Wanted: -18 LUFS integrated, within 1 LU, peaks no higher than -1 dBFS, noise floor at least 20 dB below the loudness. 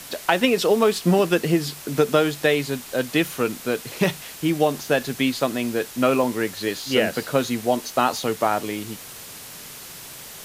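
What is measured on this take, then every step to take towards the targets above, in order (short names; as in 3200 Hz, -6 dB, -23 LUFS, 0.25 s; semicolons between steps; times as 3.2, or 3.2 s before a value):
noise floor -40 dBFS; noise floor target -43 dBFS; loudness -22.5 LUFS; peak -3.0 dBFS; loudness target -18.0 LUFS
-> denoiser 6 dB, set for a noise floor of -40 dBFS; gain +4.5 dB; limiter -1 dBFS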